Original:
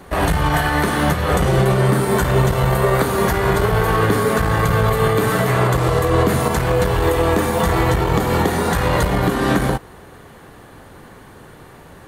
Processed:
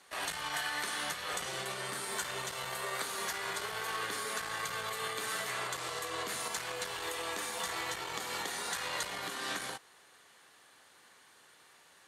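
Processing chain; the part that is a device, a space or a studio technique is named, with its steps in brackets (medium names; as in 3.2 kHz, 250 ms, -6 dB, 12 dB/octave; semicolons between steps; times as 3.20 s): piezo pickup straight into a mixer (low-pass 6.3 kHz 12 dB/octave; differentiator); trim -2 dB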